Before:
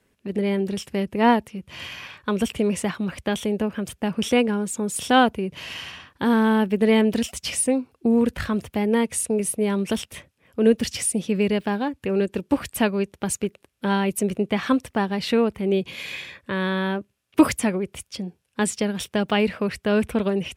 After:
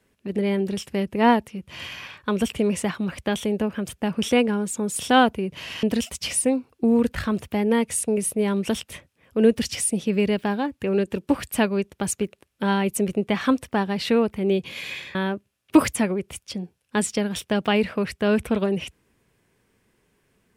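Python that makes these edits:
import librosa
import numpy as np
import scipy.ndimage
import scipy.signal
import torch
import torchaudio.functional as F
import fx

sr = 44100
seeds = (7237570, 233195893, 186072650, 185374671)

y = fx.edit(x, sr, fx.cut(start_s=5.83, length_s=1.22),
    fx.cut(start_s=16.37, length_s=0.42), tone=tone)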